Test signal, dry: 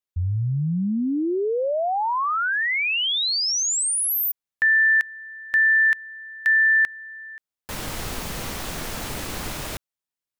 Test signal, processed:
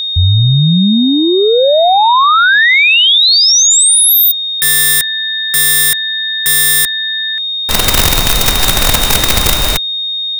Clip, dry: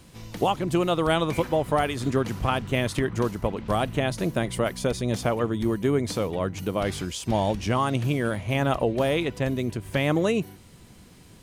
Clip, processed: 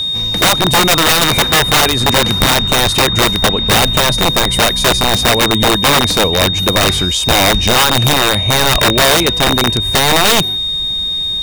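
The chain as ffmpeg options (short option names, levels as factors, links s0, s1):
-af "acontrast=82,asubboost=boost=3:cutoff=64,aeval=exprs='(mod(4.47*val(0)+1,2)-1)/4.47':c=same,aeval=exprs='val(0)+0.0708*sin(2*PI*3700*n/s)':c=same,equalizer=f=310:t=o:w=0.77:g=-2.5,volume=2.51"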